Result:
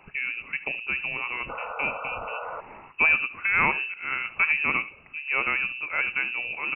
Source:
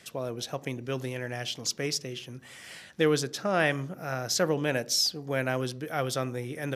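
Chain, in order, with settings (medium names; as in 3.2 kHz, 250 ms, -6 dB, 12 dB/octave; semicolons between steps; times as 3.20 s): delay 72 ms -16 dB; frequency inversion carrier 2.8 kHz; painted sound noise, 1.49–2.61 s, 440–1500 Hz -38 dBFS; trim +3 dB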